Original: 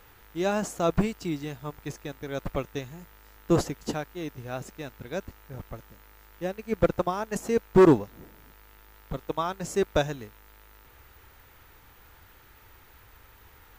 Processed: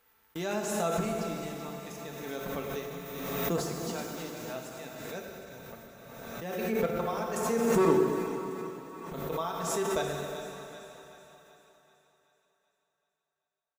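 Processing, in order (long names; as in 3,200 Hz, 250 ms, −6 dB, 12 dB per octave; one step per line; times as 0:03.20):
0:02.22–0:04.30: mu-law and A-law mismatch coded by mu
noise gate −46 dBFS, range −47 dB
high-pass filter 160 Hz 6 dB per octave
high-shelf EQ 7,300 Hz +5.5 dB
mains-hum notches 50/100/150/200/250/300/350/400/450 Hz
comb filter 4.5 ms, depth 43%
echo with a time of its own for lows and highs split 720 Hz, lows 103 ms, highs 382 ms, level −10.5 dB
dense smooth reverb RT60 3.2 s, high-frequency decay 1×, DRR 0.5 dB
background raised ahead of every attack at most 30 dB per second
level −8 dB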